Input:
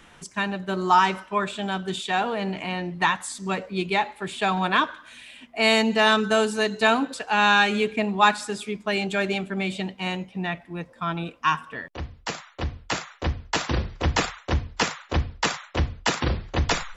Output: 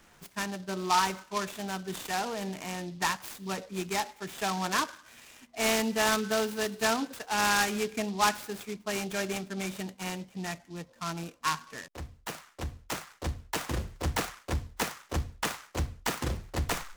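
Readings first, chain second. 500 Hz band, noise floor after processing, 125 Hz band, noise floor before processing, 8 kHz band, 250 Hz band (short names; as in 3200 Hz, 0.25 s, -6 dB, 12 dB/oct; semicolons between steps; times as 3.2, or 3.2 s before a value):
-7.5 dB, -60 dBFS, -7.5 dB, -52 dBFS, +1.0 dB, -7.5 dB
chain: noise-modulated delay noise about 3900 Hz, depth 0.057 ms; gain -7.5 dB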